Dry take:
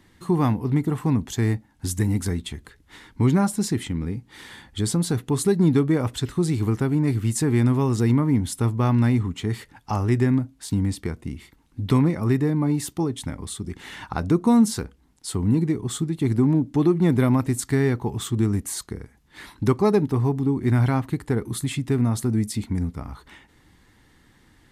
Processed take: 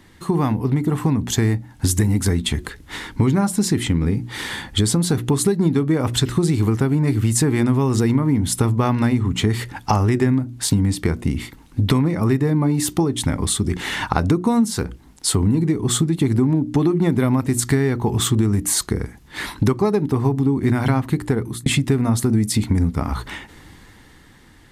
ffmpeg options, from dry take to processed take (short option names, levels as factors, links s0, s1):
-filter_complex "[0:a]asplit=2[s0][s1];[s0]atrim=end=21.66,asetpts=PTS-STARTPTS,afade=t=out:st=21.08:d=0.58[s2];[s1]atrim=start=21.66,asetpts=PTS-STARTPTS,afade=t=in:d=0.004:c=hsin[s3];[s2][s3]concat=n=2:v=0:a=1,dynaudnorm=f=220:g=13:m=3.76,bandreject=f=60:t=h:w=6,bandreject=f=120:t=h:w=6,bandreject=f=180:t=h:w=6,bandreject=f=240:t=h:w=6,bandreject=f=300:t=h:w=6,bandreject=f=360:t=h:w=6,acompressor=threshold=0.0794:ratio=6,volume=2.24"